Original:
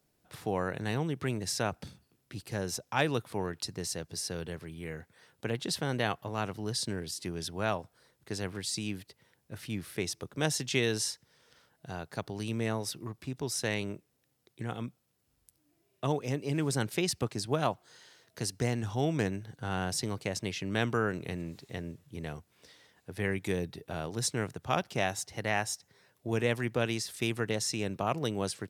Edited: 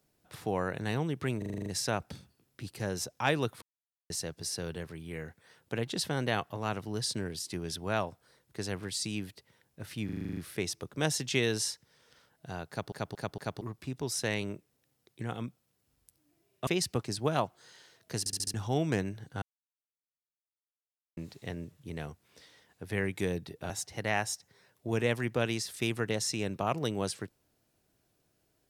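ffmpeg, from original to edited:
-filter_complex "[0:a]asplit=31[s0][s1][s2][s3][s4][s5][s6][s7][s8][s9][s10][s11][s12][s13][s14][s15][s16][s17][s18][s19][s20][s21][s22][s23][s24][s25][s26][s27][s28][s29][s30];[s0]atrim=end=1.422[s31];[s1]atrim=start=1.378:end=1.422[s32];[s2]atrim=start=1.378:end=1.422[s33];[s3]atrim=start=1.378:end=1.422[s34];[s4]atrim=start=1.378:end=1.422[s35];[s5]atrim=start=1.378:end=1.422[s36];[s6]atrim=start=1.378:end=1.422[s37];[s7]atrim=start=1.378:end=3.34,asetpts=PTS-STARTPTS,afade=t=out:st=1.958:d=0.004:c=hsin[s38];[s8]atrim=start=3.34:end=3.82,asetpts=PTS-STARTPTS,volume=0[s39];[s9]atrim=start=3.82:end=9.812,asetpts=PTS-STARTPTS,afade=t=in:d=0.004:c=hsin[s40];[s10]atrim=start=9.768:end=9.812[s41];[s11]atrim=start=9.768:end=9.812[s42];[s12]atrim=start=9.768:end=9.812[s43];[s13]atrim=start=9.768:end=9.812[s44];[s14]atrim=start=9.768:end=9.812[s45];[s15]atrim=start=9.768:end=9.812[s46];[s16]atrim=start=9.768:end=9.812[s47];[s17]atrim=start=9.768:end=12.322[s48];[s18]atrim=start=12.088:end=12.322[s49];[s19]atrim=start=12.088:end=12.322[s50];[s20]atrim=start=12.088:end=12.322[s51];[s21]atrim=start=13.008:end=16.072[s52];[s22]atrim=start=16.938:end=18.532[s53];[s23]atrim=start=18.458:end=18.532[s54];[s24]atrim=start=18.458:end=18.532[s55];[s25]atrim=start=18.458:end=18.532[s56];[s26]atrim=start=18.458:end=18.532[s57];[s27]atrim=start=18.808:end=19.69,asetpts=PTS-STARTPTS,afade=t=out:st=0.878:d=0.004:c=hsin[s58];[s28]atrim=start=19.69:end=21.44,asetpts=PTS-STARTPTS,volume=0[s59];[s29]atrim=start=21.44:end=23.972,asetpts=PTS-STARTPTS,afade=t=in:d=0.004:c=hsin[s60];[s30]atrim=start=25.098[s61];[s31][s32]acrossfade=d=0.004:c1=hsin:c2=hsin[s62];[s62][s33]acrossfade=d=0.004:c1=hsin:c2=hsin[s63];[s63][s34]acrossfade=d=0.004:c1=hsin:c2=hsin[s64];[s64][s35]acrossfade=d=0.004:c1=hsin:c2=hsin[s65];[s65][s36]acrossfade=d=0.004:c1=hsin:c2=hsin[s66];[s66][s37]acrossfade=d=0.004:c1=hsin:c2=hsin[s67];[s38][s39][s40]concat=n=3:v=0:a=1[s68];[s67][s68]acrossfade=d=0.004:c1=hsin:c2=hsin[s69];[s69][s41]acrossfade=d=0.004:c1=hsin:c2=hsin[s70];[s70][s42]acrossfade=d=0.004:c1=hsin:c2=hsin[s71];[s71][s43]acrossfade=d=0.004:c1=hsin:c2=hsin[s72];[s72][s44]acrossfade=d=0.004:c1=hsin:c2=hsin[s73];[s73][s45]acrossfade=d=0.004:c1=hsin:c2=hsin[s74];[s74][s46]acrossfade=d=0.004:c1=hsin:c2=hsin[s75];[s75][s47]acrossfade=d=0.004:c1=hsin:c2=hsin[s76];[s76][s48]acrossfade=d=0.004:c1=hsin:c2=hsin[s77];[s77][s49]acrossfade=d=0.004:c1=hsin:c2=hsin[s78];[s78][s50]acrossfade=d=0.004:c1=hsin:c2=hsin[s79];[s79][s51]acrossfade=d=0.004:c1=hsin:c2=hsin[s80];[s80][s52]acrossfade=d=0.004:c1=hsin:c2=hsin[s81];[s81][s53]acrossfade=d=0.004:c1=hsin:c2=hsin[s82];[s82][s54]acrossfade=d=0.004:c1=hsin:c2=hsin[s83];[s83][s55]acrossfade=d=0.004:c1=hsin:c2=hsin[s84];[s84][s56]acrossfade=d=0.004:c1=hsin:c2=hsin[s85];[s85][s57]acrossfade=d=0.004:c1=hsin:c2=hsin[s86];[s58][s59][s60]concat=n=3:v=0:a=1[s87];[s86][s87]acrossfade=d=0.004:c1=hsin:c2=hsin[s88];[s88][s61]acrossfade=d=0.004:c1=hsin:c2=hsin"

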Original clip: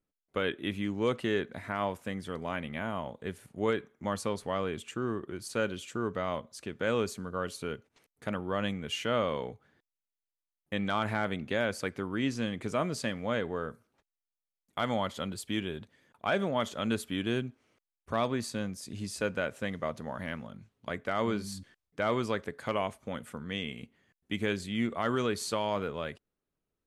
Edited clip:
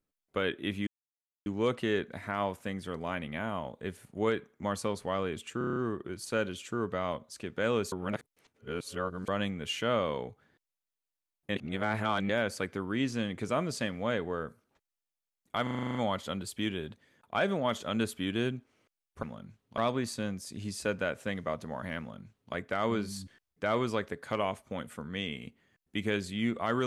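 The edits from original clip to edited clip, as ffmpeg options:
-filter_complex "[0:a]asplit=22[s0][s1][s2][s3][s4][s5][s6][s7][s8][s9][s10][s11][s12][s13][s14][s15][s16][s17][s18][s19][s20][s21];[s0]atrim=end=0.87,asetpts=PTS-STARTPTS,afade=t=out:st=0.866:d=0.004:c=hsin,apad=pad_dur=0.59[s22];[s1]atrim=start=0.87:end=5.022,asetpts=PTS-STARTPTS,afade=t=in:d=0.004:c=hsin[s23];[s2]atrim=start=4.988:end=5.022[s24];[s3]atrim=start=4.988:end=5.022[s25];[s4]atrim=start=4.988:end=5.022[s26];[s5]atrim=start=4.988:end=5.022[s27];[s6]atrim=start=4.988:end=5.022[s28];[s7]atrim=start=4.988:end=7.152[s29];[s8]atrim=start=7.148:end=8.512,asetpts=PTS-STARTPTS,areverse[s30];[s9]atrim=start=8.508:end=10.792[s31];[s10]atrim=start=10.788:end=11.522,asetpts=PTS-STARTPTS,areverse[s32];[s11]atrim=start=11.518:end=14.902[s33];[s12]atrim=start=14.858:end=14.902[s34];[s13]atrim=start=14.858:end=14.902[s35];[s14]atrim=start=14.858:end=14.902[s36];[s15]atrim=start=14.858:end=14.902[s37];[s16]atrim=start=14.858:end=14.902[s38];[s17]atrim=start=14.858:end=14.902[s39];[s18]atrim=start=14.858:end=14.902[s40];[s19]atrim=start=14.858:end=18.142[s41];[s20]atrim=start=20.348:end=20.902[s42];[s21]atrim=start=18.138[s43];[s22][s23]concat=n=2:v=0:a=1[s44];[s44][s24]acrossfade=d=0.004:c1=hsin:c2=hsin[s45];[s45][s25]acrossfade=d=0.004:c1=hsin:c2=hsin[s46];[s46][s26]acrossfade=d=0.004:c1=hsin:c2=hsin[s47];[s47][s27]acrossfade=d=0.004:c1=hsin:c2=hsin[s48];[s48][s28]acrossfade=d=0.004:c1=hsin:c2=hsin[s49];[s49][s29]acrossfade=d=0.004:c1=hsin:c2=hsin[s50];[s50][s30]acrossfade=d=0.004:c1=hsin:c2=hsin[s51];[s51][s31]acrossfade=d=0.004:c1=hsin:c2=hsin[s52];[s52][s32]acrossfade=d=0.004:c1=hsin:c2=hsin[s53];[s53][s33]acrossfade=d=0.004:c1=hsin:c2=hsin[s54];[s54][s34]acrossfade=d=0.004:c1=hsin:c2=hsin[s55];[s55][s35]acrossfade=d=0.004:c1=hsin:c2=hsin[s56];[s56][s36]acrossfade=d=0.004:c1=hsin:c2=hsin[s57];[s57][s37]acrossfade=d=0.004:c1=hsin:c2=hsin[s58];[s58][s38]acrossfade=d=0.004:c1=hsin:c2=hsin[s59];[s59][s39]acrossfade=d=0.004:c1=hsin:c2=hsin[s60];[s60][s40]acrossfade=d=0.004:c1=hsin:c2=hsin[s61];[s61][s41]acrossfade=d=0.004:c1=hsin:c2=hsin[s62];[s62][s42]acrossfade=d=0.004:c1=hsin:c2=hsin[s63];[s63][s43]acrossfade=d=0.004:c1=hsin:c2=hsin"

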